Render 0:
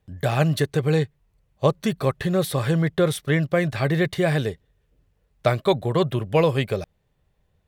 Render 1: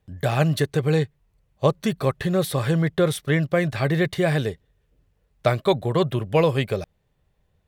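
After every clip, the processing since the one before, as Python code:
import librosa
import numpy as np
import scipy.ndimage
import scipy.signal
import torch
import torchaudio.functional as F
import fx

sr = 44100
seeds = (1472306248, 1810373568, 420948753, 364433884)

y = x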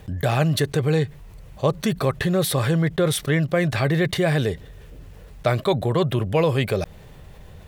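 y = fx.env_flatten(x, sr, amount_pct=50)
y = y * 10.0 ** (-2.0 / 20.0)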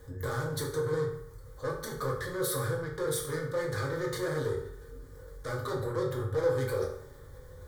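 y = 10.0 ** (-24.0 / 20.0) * np.tanh(x / 10.0 ** (-24.0 / 20.0))
y = fx.fixed_phaser(y, sr, hz=720.0, stages=6)
y = fx.rev_fdn(y, sr, rt60_s=0.68, lf_ratio=1.0, hf_ratio=0.7, size_ms=12.0, drr_db=-3.5)
y = y * 10.0 ** (-6.0 / 20.0)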